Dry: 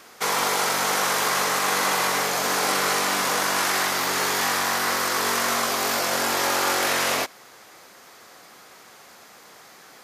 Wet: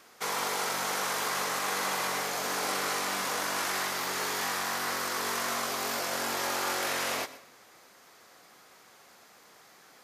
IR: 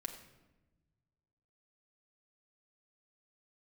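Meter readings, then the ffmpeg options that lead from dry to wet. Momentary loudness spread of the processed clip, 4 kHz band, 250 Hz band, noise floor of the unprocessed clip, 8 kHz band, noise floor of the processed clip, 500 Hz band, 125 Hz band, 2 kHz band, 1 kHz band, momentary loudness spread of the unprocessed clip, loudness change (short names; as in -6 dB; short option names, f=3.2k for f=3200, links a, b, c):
1 LU, -8.5 dB, -8.5 dB, -49 dBFS, -8.5 dB, -57 dBFS, -8.5 dB, -8.5 dB, -8.5 dB, -8.5 dB, 1 LU, -8.5 dB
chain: -filter_complex "[0:a]asplit=2[a][b];[1:a]atrim=start_sample=2205,adelay=122[c];[b][c]afir=irnorm=-1:irlink=0,volume=-13.5dB[d];[a][d]amix=inputs=2:normalize=0,volume=-8.5dB"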